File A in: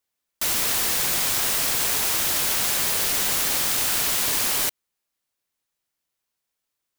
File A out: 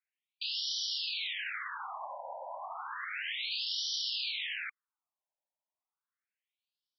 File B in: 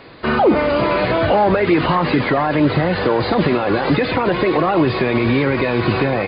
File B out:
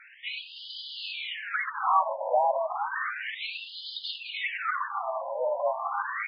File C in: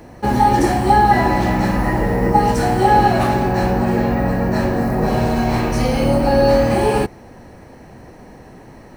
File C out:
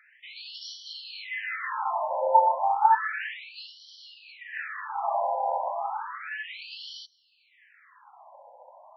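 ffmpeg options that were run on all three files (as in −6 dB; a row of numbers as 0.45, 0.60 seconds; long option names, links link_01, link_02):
-af "afreqshift=61,afftfilt=real='re*between(b*sr/1024,710*pow(4200/710,0.5+0.5*sin(2*PI*0.32*pts/sr))/1.41,710*pow(4200/710,0.5+0.5*sin(2*PI*0.32*pts/sr))*1.41)':imag='im*between(b*sr/1024,710*pow(4200/710,0.5+0.5*sin(2*PI*0.32*pts/sr))/1.41,710*pow(4200/710,0.5+0.5*sin(2*PI*0.32*pts/sr))*1.41)':win_size=1024:overlap=0.75,volume=-3.5dB"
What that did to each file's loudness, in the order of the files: −15.0, −13.5, −12.0 LU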